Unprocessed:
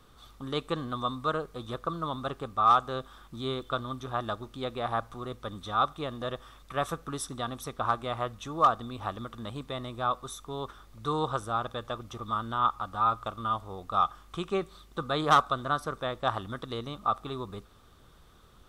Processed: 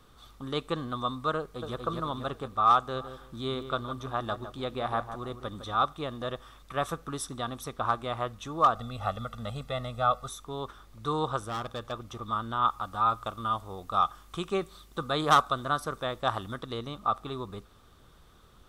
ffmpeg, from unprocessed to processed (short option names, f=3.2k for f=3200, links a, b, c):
-filter_complex "[0:a]asplit=2[a][b];[b]afade=t=in:st=1.38:d=0.01,afade=t=out:st=1.86:d=0.01,aecho=0:1:240|480|720|960|1200|1440|1680:0.668344|0.334172|0.167086|0.083543|0.0417715|0.0208857|0.0104429[c];[a][c]amix=inputs=2:normalize=0,asplit=3[d][e][f];[d]afade=t=out:st=2.94:d=0.02[g];[e]asplit=2[h][i];[i]adelay=157,lowpass=f=2.1k:p=1,volume=-10dB,asplit=2[j][k];[k]adelay=157,lowpass=f=2.1k:p=1,volume=0.23,asplit=2[l][m];[m]adelay=157,lowpass=f=2.1k:p=1,volume=0.23[n];[h][j][l][n]amix=inputs=4:normalize=0,afade=t=in:st=2.94:d=0.02,afade=t=out:st=5.83:d=0.02[o];[f]afade=t=in:st=5.83:d=0.02[p];[g][o][p]amix=inputs=3:normalize=0,asettb=1/sr,asplit=3[q][r][s];[q]atrim=end=8.754[t];[r]atrim=start=8.75:end=10.29,asetpts=PTS-STARTPTS,afade=t=in:d=0.004:c=qsin,afade=t=out:st=1.536:d=0.004:c=qsin,aecho=1:1:1.5:0.88,atrim=end_sample=67914[u];[s]atrim=start=10.286[v];[t][u]acrossfade=d=0.004:c1=hsin:c2=qsin[w];[w][v]acrossfade=d=0.004:c1=qsin:c2=hsin,asplit=3[x][y][z];[x]afade=t=out:st=11.46:d=0.02[aa];[y]asoftclip=type=hard:threshold=-30dB,afade=t=in:st=11.46:d=0.02,afade=t=out:st=11.91:d=0.02[ab];[z]afade=t=in:st=11.91:d=0.02[ac];[aa][ab][ac]amix=inputs=3:normalize=0,asettb=1/sr,asplit=3[ad][ae][af];[ad]atrim=end=12.624[ag];[ae]atrim=start=12.62:end=16.56,asetpts=PTS-STARTPTS,afade=t=in:d=0.004:c=qsin,afade=t=out:st=3.936:d=0.004:c=qsin,highshelf=f=5.9k:g=6.5[ah];[af]atrim=start=16.556[ai];[ag][ah]acrossfade=d=0.004:c1=hsin:c2=qsin[aj];[aj][ai]acrossfade=d=0.004:c1=qsin:c2=hsin"